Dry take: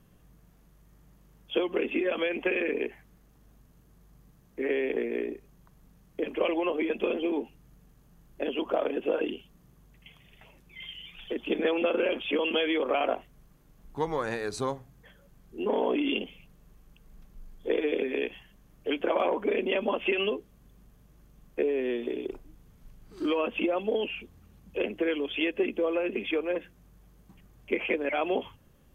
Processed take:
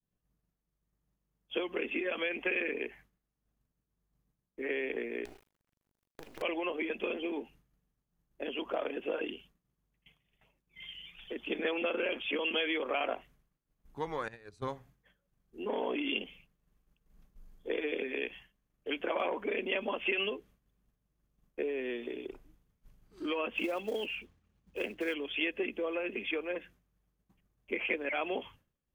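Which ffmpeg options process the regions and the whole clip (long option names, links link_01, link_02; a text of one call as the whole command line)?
ffmpeg -i in.wav -filter_complex "[0:a]asettb=1/sr,asplit=3[link_01][link_02][link_03];[link_01]atrim=end=5.254[link_04];[link_02]atrim=start=5.25:end=6.42,asetpts=PTS-STARTPTS,afade=type=in:duration=0.004:curve=qsin,afade=type=out:start_time=1.166:duration=0.004:curve=qsin,acompressor=threshold=-37dB:ratio=3:attack=3.2:release=140:knee=1:detection=peak,acrusher=bits=6:dc=4:mix=0:aa=0.000001[link_05];[link_03]atrim=start=6.416[link_06];[link_04][link_05]acrossfade=duration=0.004:curve1=hsin:curve2=qsin[link_07];[link_07][link_06]acrossfade=duration=0.004:curve1=qsin:curve2=hsin,asettb=1/sr,asplit=3[link_08][link_09][link_10];[link_08]atrim=end=14.284[link_11];[link_09]atrim=start=14.28:end=14.68,asetpts=PTS-STARTPTS,afade=type=in:duration=0.004:curve=qsin,afade=type=out:start_time=0.396:duration=0.004:curve=qsin,agate=range=-19dB:threshold=-30dB:ratio=16:release=100:detection=peak,equalizer=frequency=77:width=0.59:gain=14[link_12];[link_10]atrim=start=14.676[link_13];[link_11][link_12]acrossfade=duration=0.004:curve1=hsin:curve2=qsin[link_14];[link_14][link_13]acrossfade=duration=0.004:curve1=qsin:curve2=hsin,asettb=1/sr,asplit=3[link_15][link_16][link_17];[link_15]atrim=end=23.544[link_18];[link_16]atrim=start=23.54:end=25.14,asetpts=PTS-STARTPTS,afade=type=in:duration=0.004:curve=qsin,afade=type=out:start_time=1.596:duration=0.004:curve=qsin,lowpass=7100,acrusher=bits=6:mode=log:mix=0:aa=0.000001[link_19];[link_17]atrim=start=25.136[link_20];[link_18][link_19]acrossfade=duration=0.004:curve1=hsin:curve2=qsin[link_21];[link_21][link_20]acrossfade=duration=0.004:curve1=qsin:curve2=hsin,agate=range=-33dB:threshold=-47dB:ratio=3:detection=peak,adynamicequalizer=threshold=0.00501:dfrequency=2200:dqfactor=0.74:tfrequency=2200:tqfactor=0.74:attack=5:release=100:ratio=0.375:range=3.5:mode=boostabove:tftype=bell,volume=-8dB" out.wav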